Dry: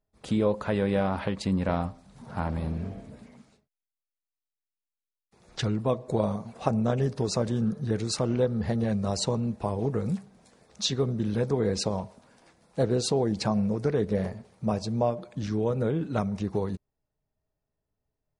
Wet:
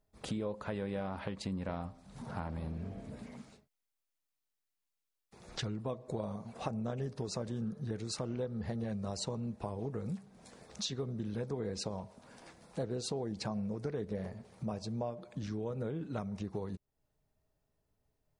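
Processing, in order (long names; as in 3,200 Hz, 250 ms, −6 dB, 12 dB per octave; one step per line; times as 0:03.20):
downward compressor 2.5 to 1, threshold −46 dBFS, peak gain reduction 17.5 dB
level +3.5 dB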